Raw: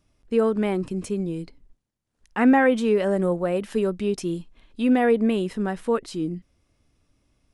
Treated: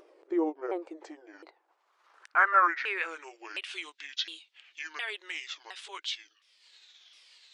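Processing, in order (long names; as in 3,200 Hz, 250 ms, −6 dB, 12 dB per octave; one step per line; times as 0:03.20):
pitch shifter swept by a sawtooth −9.5 semitones, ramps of 713 ms
dynamic equaliser 420 Hz, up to −6 dB, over −32 dBFS, Q 0.87
band-pass filter sweep 440 Hz → 3,600 Hz, 0:00.52–0:03.92
linear-phase brick-wall high-pass 300 Hz
tilt shelving filter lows −4.5 dB, about 740 Hz
upward compression, threshold −52 dBFS
level +8 dB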